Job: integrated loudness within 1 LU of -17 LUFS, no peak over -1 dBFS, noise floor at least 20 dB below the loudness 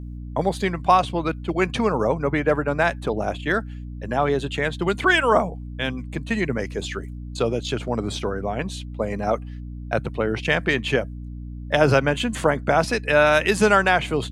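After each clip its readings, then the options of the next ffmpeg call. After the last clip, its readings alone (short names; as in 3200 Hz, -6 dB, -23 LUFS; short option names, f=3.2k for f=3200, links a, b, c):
hum 60 Hz; harmonics up to 300 Hz; hum level -31 dBFS; loudness -22.0 LUFS; peak -2.5 dBFS; loudness target -17.0 LUFS
-> -af "bandreject=f=60:t=h:w=6,bandreject=f=120:t=h:w=6,bandreject=f=180:t=h:w=6,bandreject=f=240:t=h:w=6,bandreject=f=300:t=h:w=6"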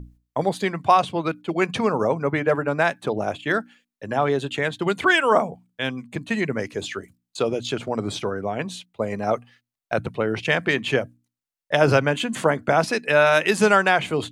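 hum none; loudness -22.5 LUFS; peak -2.0 dBFS; loudness target -17.0 LUFS
-> -af "volume=5.5dB,alimiter=limit=-1dB:level=0:latency=1"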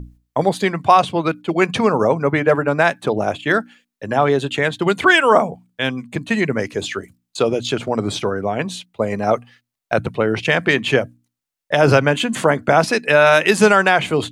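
loudness -17.5 LUFS; peak -1.0 dBFS; noise floor -81 dBFS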